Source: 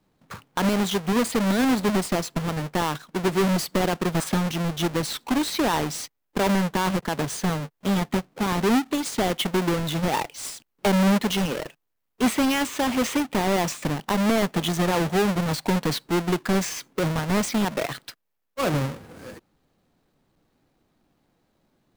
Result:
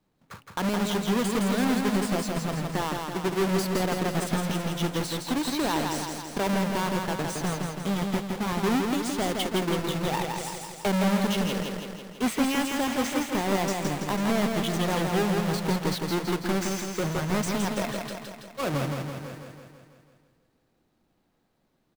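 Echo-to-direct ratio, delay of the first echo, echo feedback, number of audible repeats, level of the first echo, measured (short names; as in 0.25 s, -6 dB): -2.0 dB, 0.165 s, 60%, 7, -4.0 dB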